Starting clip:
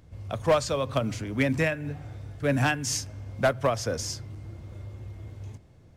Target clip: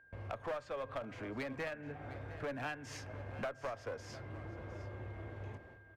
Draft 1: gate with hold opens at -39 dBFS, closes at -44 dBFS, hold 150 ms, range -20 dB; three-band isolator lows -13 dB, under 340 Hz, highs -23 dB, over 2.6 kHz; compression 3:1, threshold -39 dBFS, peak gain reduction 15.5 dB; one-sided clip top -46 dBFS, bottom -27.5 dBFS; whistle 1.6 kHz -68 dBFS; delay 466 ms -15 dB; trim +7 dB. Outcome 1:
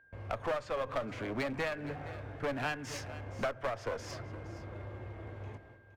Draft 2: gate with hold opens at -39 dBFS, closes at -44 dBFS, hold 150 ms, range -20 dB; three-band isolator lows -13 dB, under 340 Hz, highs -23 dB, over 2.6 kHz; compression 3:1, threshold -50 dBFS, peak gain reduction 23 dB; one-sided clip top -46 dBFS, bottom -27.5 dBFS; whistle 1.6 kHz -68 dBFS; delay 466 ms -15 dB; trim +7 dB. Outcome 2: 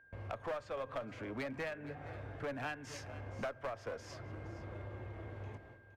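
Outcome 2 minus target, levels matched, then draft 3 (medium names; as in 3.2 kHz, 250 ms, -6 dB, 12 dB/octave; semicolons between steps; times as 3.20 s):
echo 241 ms early
gate with hold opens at -39 dBFS, closes at -44 dBFS, hold 150 ms, range -20 dB; three-band isolator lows -13 dB, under 340 Hz, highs -23 dB, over 2.6 kHz; compression 3:1, threshold -50 dBFS, peak gain reduction 23 dB; one-sided clip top -46 dBFS, bottom -27.5 dBFS; whistle 1.6 kHz -68 dBFS; delay 707 ms -15 dB; trim +7 dB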